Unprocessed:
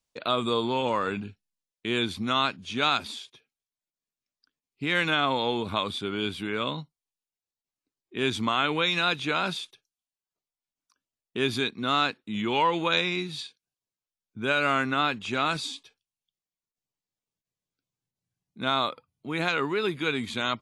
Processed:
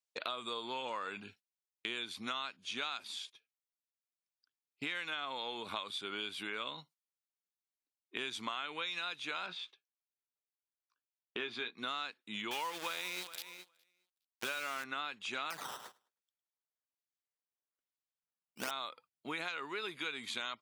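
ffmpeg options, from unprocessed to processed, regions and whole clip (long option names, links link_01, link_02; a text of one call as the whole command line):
ffmpeg -i in.wav -filter_complex "[0:a]asettb=1/sr,asplit=3[link_01][link_02][link_03];[link_01]atrim=end=9.464[link_04];[link_02]atrim=start=9.46:end=11.77,asetpts=PTS-STARTPTS,afade=type=in:duration=0.004:curve=qsin,afade=type=out:start_time=2.306:duration=0.004:curve=qsin,highpass=140,lowpass=3000,asplit=2[link_05][link_06];[link_06]adelay=17,volume=-8.5dB[link_07];[link_05][link_07]amix=inputs=2:normalize=0,atrim=end_sample=101871[link_08];[link_03]atrim=start=11.766[link_09];[link_04][link_08]acrossfade=duration=0.004:curve1=hsin:curve2=qsin[link_10];[link_10][link_09]acrossfade=duration=0.004:curve1=qsin:curve2=hsin,asettb=1/sr,asplit=3[link_11][link_12][link_13];[link_11]atrim=end=12.514[link_14];[link_12]atrim=start=12.51:end=14.84,asetpts=PTS-STARTPTS,afade=type=in:duration=0.004:curve=qsin,afade=type=out:start_time=2.326:duration=0.004:curve=qsin,deesser=0.7,aeval=exprs='val(0)*gte(abs(val(0)),0.0355)':channel_layout=same,aecho=1:1:413|826:0.0841|0.0143,atrim=end_sample=102753[link_15];[link_13]atrim=start=14.836[link_16];[link_14][link_15]acrossfade=duration=0.004:curve1=hsin:curve2=qsin[link_17];[link_17][link_16]acrossfade=duration=0.004:curve1=qsin:curve2=hsin,asettb=1/sr,asplit=3[link_18][link_19][link_20];[link_18]atrim=end=15.504[link_21];[link_19]atrim=start=15.5:end=18.71,asetpts=PTS-STARTPTS,afade=type=in:duration=0.004:curve=qsin,afade=type=out:start_time=3.206:duration=0.004:curve=qsin,acrusher=samples=11:mix=1:aa=0.000001:lfo=1:lforange=17.6:lforate=1.1,aecho=1:1:105|210|315:0.224|0.0694|0.0215,atrim=end_sample=141561[link_22];[link_20]atrim=start=18.706[link_23];[link_21][link_22]acrossfade=duration=0.004:curve1=hsin:curve2=qsin[link_24];[link_24][link_23]acrossfade=duration=0.004:curve1=qsin:curve2=hsin,agate=range=-14dB:threshold=-50dB:ratio=16:detection=peak,highpass=frequency=1100:poles=1,acompressor=threshold=-42dB:ratio=6,volume=4.5dB" out.wav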